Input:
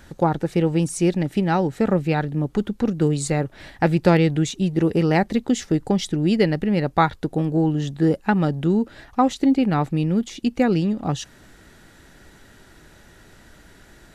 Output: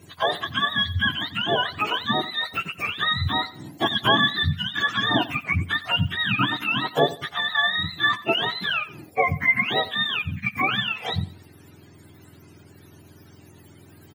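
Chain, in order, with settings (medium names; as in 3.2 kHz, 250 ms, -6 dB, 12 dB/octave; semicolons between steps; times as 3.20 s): spectrum inverted on a logarithmic axis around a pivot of 750 Hz; feedback delay 89 ms, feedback 30%, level -17 dB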